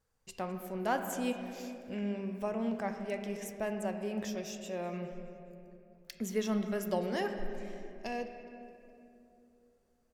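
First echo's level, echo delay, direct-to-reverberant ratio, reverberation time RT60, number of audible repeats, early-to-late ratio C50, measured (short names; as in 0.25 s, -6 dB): -20.0 dB, 0.208 s, 5.5 dB, 2.8 s, 2, 6.5 dB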